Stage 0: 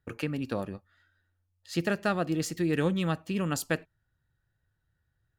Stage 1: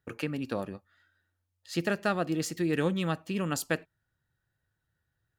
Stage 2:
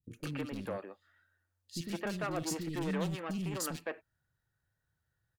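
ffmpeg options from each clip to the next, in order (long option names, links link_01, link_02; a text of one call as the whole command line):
ffmpeg -i in.wav -af "lowshelf=frequency=82:gain=-10.5" out.wav
ffmpeg -i in.wav -filter_complex "[0:a]asoftclip=type=hard:threshold=-29dB,acrossover=split=300|2900[link_01][link_02][link_03];[link_03]adelay=40[link_04];[link_02]adelay=160[link_05];[link_01][link_05][link_04]amix=inputs=3:normalize=0,volume=-1.5dB" out.wav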